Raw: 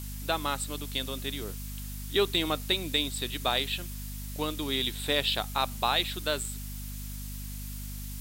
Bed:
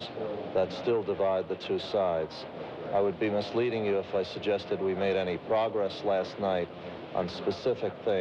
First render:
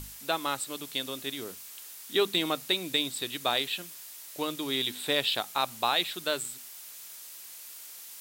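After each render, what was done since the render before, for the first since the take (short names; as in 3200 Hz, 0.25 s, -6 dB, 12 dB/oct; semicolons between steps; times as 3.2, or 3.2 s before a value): notches 50/100/150/200/250 Hz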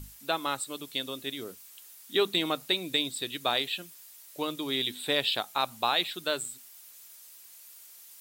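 denoiser 8 dB, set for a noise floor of -46 dBFS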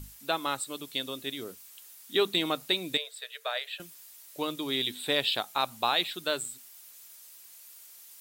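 2.97–3.8 rippled Chebyshev high-pass 430 Hz, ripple 9 dB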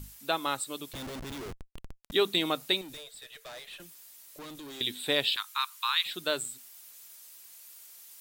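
0.93–2.12 Schmitt trigger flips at -40 dBFS; 2.81–4.81 tube stage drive 42 dB, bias 0.25; 5.36–6.06 steep high-pass 980 Hz 72 dB/oct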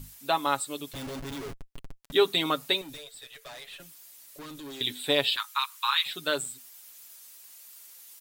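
dynamic EQ 900 Hz, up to +4 dB, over -41 dBFS, Q 0.97; comb 7.2 ms, depth 55%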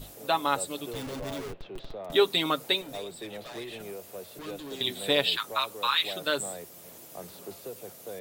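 add bed -12.5 dB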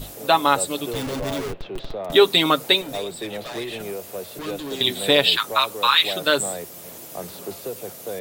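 gain +9 dB; limiter -3 dBFS, peak gain reduction 2 dB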